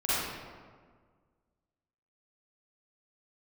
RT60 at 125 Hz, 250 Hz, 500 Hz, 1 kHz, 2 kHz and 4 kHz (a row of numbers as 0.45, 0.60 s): 2.0, 1.9, 1.8, 1.6, 1.3, 0.95 s